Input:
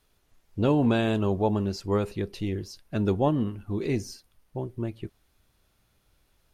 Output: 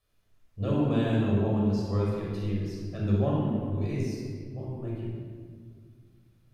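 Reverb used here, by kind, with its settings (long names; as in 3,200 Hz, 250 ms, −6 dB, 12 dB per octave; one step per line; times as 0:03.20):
rectangular room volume 2,900 cubic metres, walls mixed, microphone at 6 metres
level −13 dB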